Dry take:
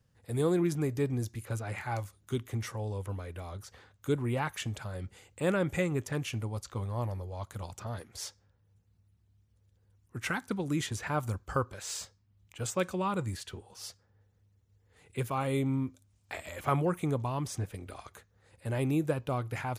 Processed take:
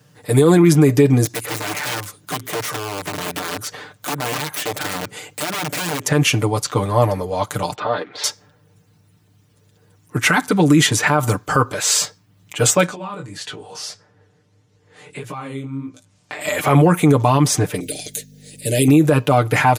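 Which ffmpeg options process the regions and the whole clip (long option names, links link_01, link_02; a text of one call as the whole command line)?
ffmpeg -i in.wav -filter_complex "[0:a]asettb=1/sr,asplit=3[link_01][link_02][link_03];[link_01]atrim=end=1.254[link_04];[link_02]atrim=start=1.25:end=6.05,asetpts=PTS-STARTPTS,afade=type=in:duration=0.004:curve=qsin,afade=type=out:start_time=4.796:duration=0.004:curve=qsin,acompressor=threshold=-41dB:ratio=12:attack=3.2:release=140:knee=1:detection=peak,aeval=exprs='(mod(100*val(0)+1,2)-1)/100':channel_layout=same[link_05];[link_03]atrim=start=6.046[link_06];[link_04][link_05]acrossfade=duration=0.004:curve1=hsin:curve2=qsin[link_07];[link_07][link_06]acrossfade=duration=0.004:curve1=qsin:curve2=hsin,asettb=1/sr,asplit=3[link_08][link_09][link_10];[link_08]atrim=end=7.754[link_11];[link_09]atrim=start=7.75:end=8.24,asetpts=PTS-STARTPTS,afade=type=in:duration=0.004:curve=qsin,afade=type=out:start_time=0.486:duration=0.004:curve=qsin,lowpass=frequency=3900:width_type=q:width=4.3,acrossover=split=240 2300:gain=0.178 1 0.141[link_12][link_13][link_14];[link_12][link_13][link_14]amix=inputs=3:normalize=0[link_15];[link_10]atrim=start=8.236[link_16];[link_11][link_15]acrossfade=duration=0.004:curve1=hsin:curve2=qsin[link_17];[link_17][link_16]acrossfade=duration=0.004:curve1=qsin:curve2=hsin,asettb=1/sr,asplit=3[link_18][link_19][link_20];[link_18]atrim=end=12.864[link_21];[link_19]atrim=start=12.86:end=16.41,asetpts=PTS-STARTPTS,afade=type=in:duration=0.004:curve=qsin,afade=type=out:start_time=3.546:duration=0.004:curve=qsin,lowpass=8000,acompressor=threshold=-44dB:ratio=10:attack=3.2:release=140:knee=1:detection=peak,flanger=delay=16.5:depth=7.5:speed=1.6[link_22];[link_20]atrim=start=16.406[link_23];[link_21][link_22]acrossfade=duration=0.004:curve1=hsin:curve2=qsin[link_24];[link_24][link_23]acrossfade=duration=0.004:curve1=qsin:curve2=hsin,asettb=1/sr,asplit=3[link_25][link_26][link_27];[link_25]atrim=end=17.804[link_28];[link_26]atrim=start=17.8:end=18.88,asetpts=PTS-STARTPTS,afade=type=in:duration=0.004:curve=qsin,afade=type=out:start_time=1.076:duration=0.004:curve=qsin,asuperstop=centerf=1100:order=4:qfactor=0.52,bass=frequency=250:gain=-6,treble=frequency=4000:gain=9,aeval=exprs='val(0)+0.00158*(sin(2*PI*50*n/s)+sin(2*PI*2*50*n/s)/2+sin(2*PI*3*50*n/s)/3+sin(2*PI*4*50*n/s)/4+sin(2*PI*5*50*n/s)/5)':channel_layout=same[link_29];[link_27]atrim=start=18.876[link_30];[link_28][link_29]acrossfade=duration=0.004:curve1=hsin:curve2=qsin[link_31];[link_31][link_30]acrossfade=duration=0.004:curve1=qsin:curve2=hsin,highpass=160,aecho=1:1:6.7:0.73,alimiter=level_in=23dB:limit=-1dB:release=50:level=0:latency=1,volume=-3dB" out.wav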